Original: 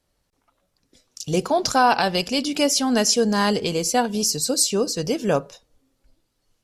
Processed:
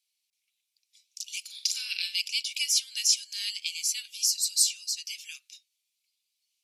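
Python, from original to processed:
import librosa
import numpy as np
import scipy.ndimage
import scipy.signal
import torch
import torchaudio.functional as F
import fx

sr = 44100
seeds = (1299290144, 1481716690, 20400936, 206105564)

y = scipy.signal.sosfilt(scipy.signal.cheby1(5, 1.0, 2300.0, 'highpass', fs=sr, output='sos'), x)
y = fx.room_flutter(y, sr, wall_m=7.6, rt60_s=0.3, at=(1.45, 2.2))
y = F.gain(torch.from_numpy(y), -2.0).numpy()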